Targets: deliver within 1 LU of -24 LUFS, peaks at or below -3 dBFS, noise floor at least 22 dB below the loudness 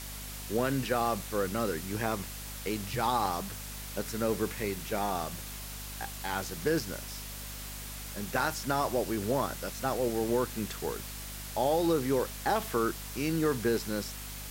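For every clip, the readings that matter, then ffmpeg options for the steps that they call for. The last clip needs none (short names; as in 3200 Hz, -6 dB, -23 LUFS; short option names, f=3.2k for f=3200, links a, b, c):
hum 50 Hz; harmonics up to 250 Hz; hum level -42 dBFS; noise floor -42 dBFS; noise floor target -55 dBFS; loudness -32.5 LUFS; peak -14.0 dBFS; loudness target -24.0 LUFS
-> -af "bandreject=f=50:t=h:w=6,bandreject=f=100:t=h:w=6,bandreject=f=150:t=h:w=6,bandreject=f=200:t=h:w=6,bandreject=f=250:t=h:w=6"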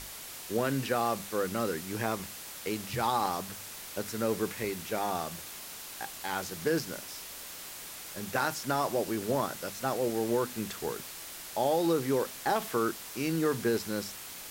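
hum none; noise floor -44 dBFS; noise floor target -55 dBFS
-> -af "afftdn=nr=11:nf=-44"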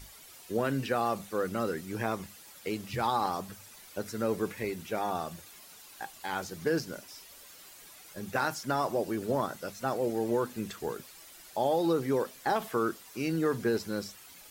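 noise floor -52 dBFS; noise floor target -55 dBFS
-> -af "afftdn=nr=6:nf=-52"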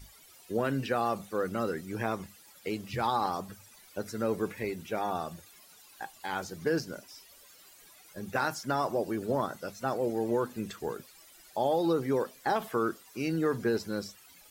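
noise floor -57 dBFS; loudness -32.5 LUFS; peak -14.5 dBFS; loudness target -24.0 LUFS
-> -af "volume=8.5dB"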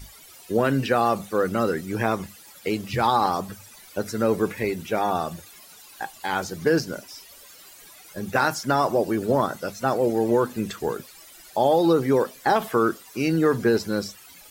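loudness -24.0 LUFS; peak -6.0 dBFS; noise floor -48 dBFS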